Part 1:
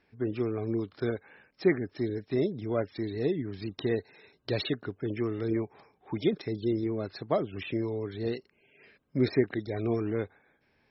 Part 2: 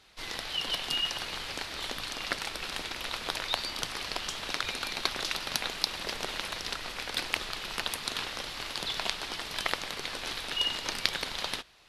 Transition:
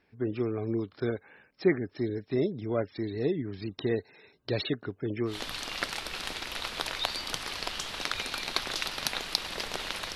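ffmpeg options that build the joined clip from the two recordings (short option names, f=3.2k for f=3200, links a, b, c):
-filter_complex "[0:a]apad=whole_dur=10.15,atrim=end=10.15,atrim=end=5.43,asetpts=PTS-STARTPTS[a];[1:a]atrim=start=1.74:end=6.64,asetpts=PTS-STARTPTS[b];[a][b]acrossfade=d=0.18:c1=tri:c2=tri"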